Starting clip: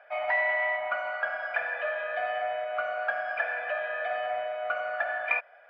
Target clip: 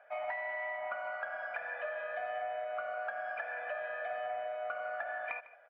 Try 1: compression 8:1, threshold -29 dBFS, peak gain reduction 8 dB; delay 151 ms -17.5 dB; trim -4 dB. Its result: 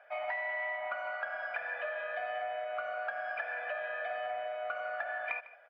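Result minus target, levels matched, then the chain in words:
4 kHz band +3.5 dB
compression 8:1, threshold -29 dBFS, peak gain reduction 8 dB; treble shelf 2.9 kHz -10.5 dB; delay 151 ms -17.5 dB; trim -4 dB

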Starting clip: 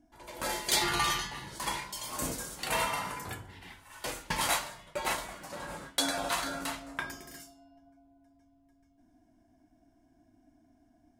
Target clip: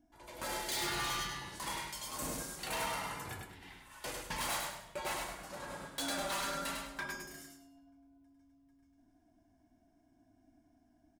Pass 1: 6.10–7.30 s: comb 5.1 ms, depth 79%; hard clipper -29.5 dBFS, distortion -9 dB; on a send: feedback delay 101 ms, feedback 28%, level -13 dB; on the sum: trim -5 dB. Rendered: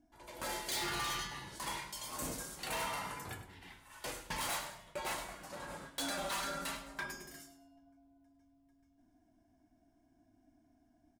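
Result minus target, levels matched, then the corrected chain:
echo-to-direct -9 dB
6.10–7.30 s: comb 5.1 ms, depth 79%; hard clipper -29.5 dBFS, distortion -9 dB; on a send: feedback delay 101 ms, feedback 28%, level -4 dB; on the sum: trim -5 dB

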